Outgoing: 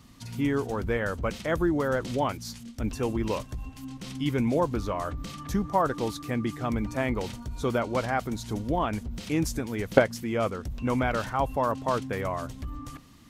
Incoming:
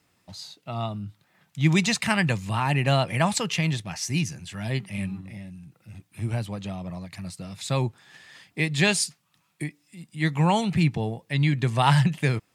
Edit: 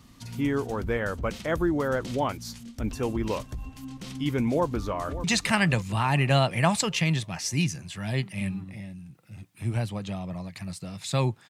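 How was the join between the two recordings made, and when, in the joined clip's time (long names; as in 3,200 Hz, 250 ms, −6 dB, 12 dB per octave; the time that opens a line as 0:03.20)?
outgoing
0:04.50–0:05.24: delay throw 580 ms, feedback 50%, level −13 dB
0:05.24: continue with incoming from 0:01.81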